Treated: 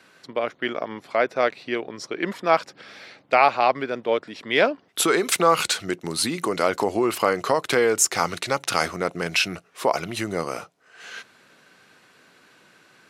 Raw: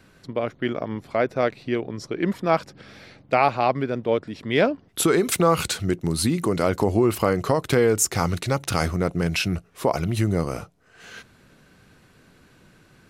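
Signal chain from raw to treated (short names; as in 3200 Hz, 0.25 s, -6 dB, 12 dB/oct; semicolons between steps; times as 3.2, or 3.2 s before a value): weighting filter A; gain +3 dB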